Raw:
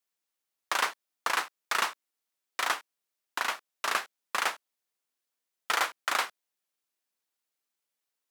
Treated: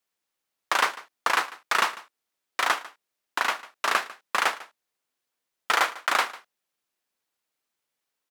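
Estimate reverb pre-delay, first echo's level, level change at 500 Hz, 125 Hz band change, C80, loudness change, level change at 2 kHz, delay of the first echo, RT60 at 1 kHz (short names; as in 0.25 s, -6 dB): none, -19.0 dB, +6.0 dB, n/a, none, +5.0 dB, +5.5 dB, 0.148 s, none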